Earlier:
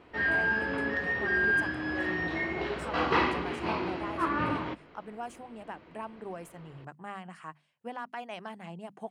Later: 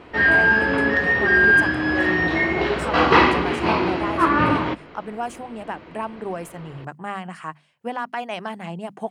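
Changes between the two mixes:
speech +11.0 dB; background +11.5 dB

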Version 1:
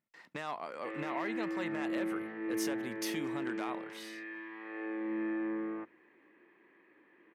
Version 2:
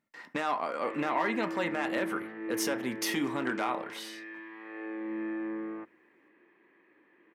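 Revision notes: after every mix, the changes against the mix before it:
speech +6.0 dB; reverb: on, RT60 0.45 s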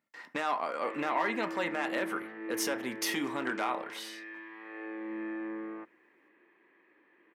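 master: add low shelf 210 Hz -9.5 dB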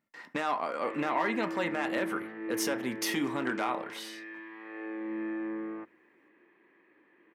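master: add low shelf 210 Hz +9.5 dB

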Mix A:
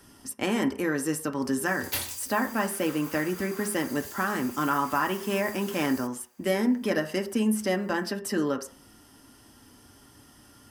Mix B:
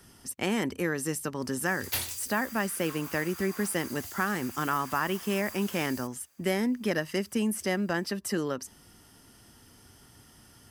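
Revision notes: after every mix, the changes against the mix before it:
speech: add bell 2100 Hz +2.5 dB 0.2 oct; reverb: off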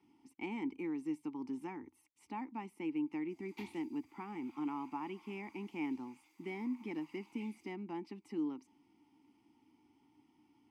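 background: entry +1.65 s; master: add vowel filter u

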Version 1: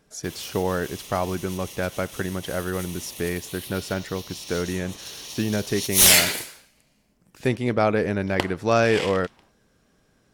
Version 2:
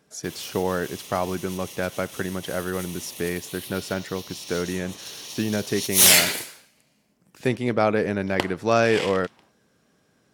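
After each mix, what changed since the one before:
master: add HPF 110 Hz 12 dB/oct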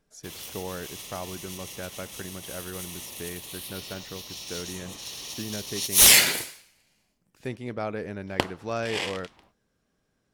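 speech -11.0 dB; master: remove HPF 110 Hz 12 dB/oct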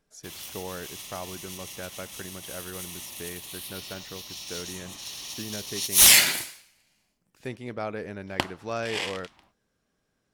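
background: add bell 460 Hz -11.5 dB 0.34 oct; master: add low shelf 460 Hz -3 dB

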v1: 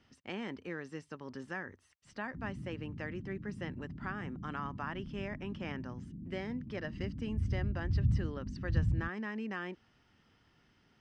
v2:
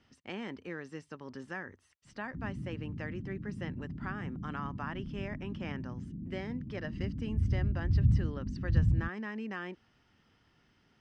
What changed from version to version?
background +4.0 dB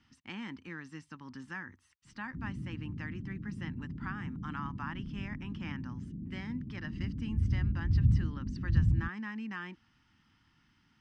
speech: add band shelf 520 Hz -14.5 dB 1.1 oct

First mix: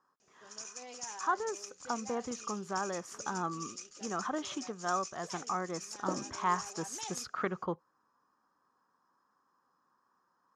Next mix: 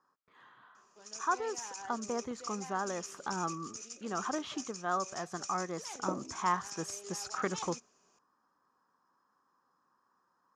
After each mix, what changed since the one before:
first sound: entry +0.55 s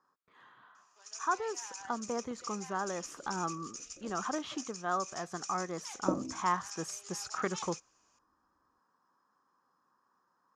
first sound: add HPF 900 Hz 12 dB/oct; second sound: add tilt -4.5 dB/oct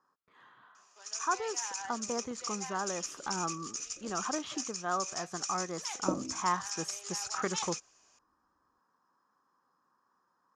first sound +8.0 dB; reverb: off

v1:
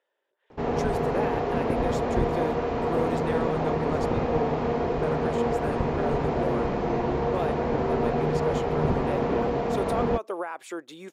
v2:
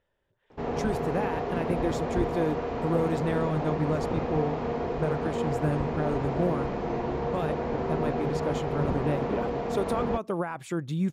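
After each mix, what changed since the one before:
speech: remove HPF 360 Hz 24 dB/oct; background -4.0 dB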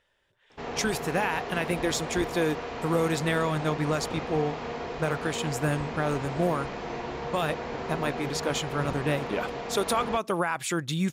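speech +7.0 dB; master: add tilt shelf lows -7.5 dB, about 1200 Hz

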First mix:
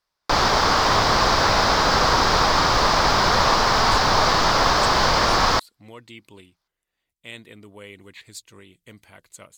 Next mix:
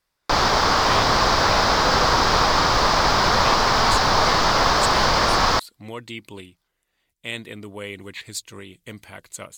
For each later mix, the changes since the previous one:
speech +8.0 dB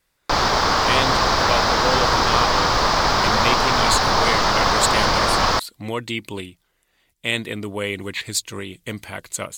speech +8.0 dB

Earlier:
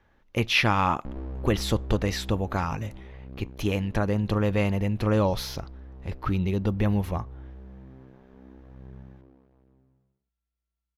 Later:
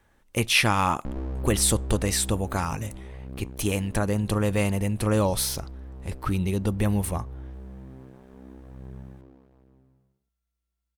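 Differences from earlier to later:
background +3.5 dB; master: remove running mean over 5 samples

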